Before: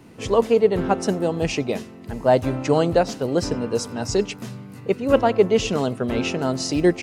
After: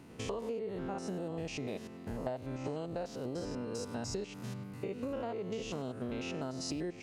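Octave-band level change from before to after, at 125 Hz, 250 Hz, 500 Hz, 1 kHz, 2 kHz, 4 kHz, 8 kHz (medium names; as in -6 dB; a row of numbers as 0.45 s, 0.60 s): -15.0 dB, -16.0 dB, -19.5 dB, -19.5 dB, -17.0 dB, -15.5 dB, -14.5 dB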